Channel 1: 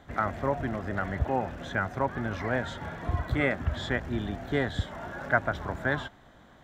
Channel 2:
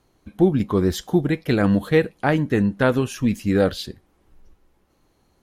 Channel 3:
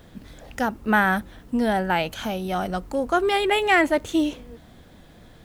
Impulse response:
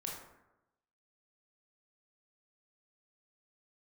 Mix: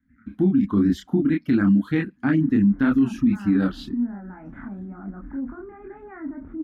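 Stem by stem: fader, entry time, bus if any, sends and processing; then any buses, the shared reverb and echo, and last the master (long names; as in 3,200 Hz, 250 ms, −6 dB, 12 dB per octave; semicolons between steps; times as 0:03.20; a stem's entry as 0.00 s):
−14.0 dB, 0.00 s, bus A, no send, inverse Chebyshev band-stop filter 440–920 Hz, stop band 50 dB; automatic ducking −18 dB, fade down 0.45 s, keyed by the second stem
+1.0 dB, 0.00 s, no bus, no send, reverb reduction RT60 0.77 s; noise gate with hold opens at −52 dBFS; high-pass filter 48 Hz
+2.0 dB, 2.40 s, bus A, no send, low-pass filter 1,500 Hz 24 dB per octave; brickwall limiter −20 dBFS, peak gain reduction 11 dB; level that may rise only so fast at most 570 dB per second
bus A: 0.0 dB, flat-topped bell 3,900 Hz −13 dB 1.2 octaves; brickwall limiter −28.5 dBFS, peak gain reduction 11.5 dB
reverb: not used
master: drawn EQ curve 150 Hz 0 dB, 270 Hz +15 dB, 480 Hz −14 dB, 1,400 Hz +1 dB, 10,000 Hz −14 dB; multi-voice chorus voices 4, 1.5 Hz, delay 28 ms, depth 3 ms; brickwall limiter −11.5 dBFS, peak gain reduction 8.5 dB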